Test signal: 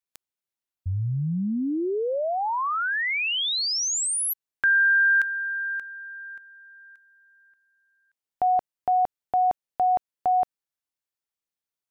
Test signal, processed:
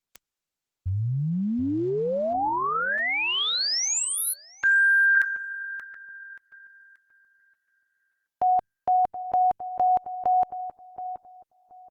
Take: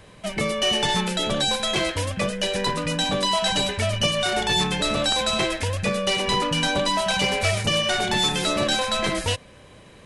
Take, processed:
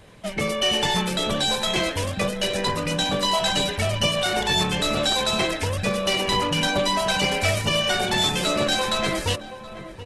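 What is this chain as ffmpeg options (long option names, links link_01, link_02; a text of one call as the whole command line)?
ffmpeg -i in.wav -filter_complex "[0:a]asplit=2[link_01][link_02];[link_02]adelay=726,lowpass=frequency=1200:poles=1,volume=-11.5dB,asplit=2[link_03][link_04];[link_04]adelay=726,lowpass=frequency=1200:poles=1,volume=0.22,asplit=2[link_05][link_06];[link_06]adelay=726,lowpass=frequency=1200:poles=1,volume=0.22[link_07];[link_01][link_03][link_05][link_07]amix=inputs=4:normalize=0" -ar 48000 -c:a libopus -b:a 16k out.opus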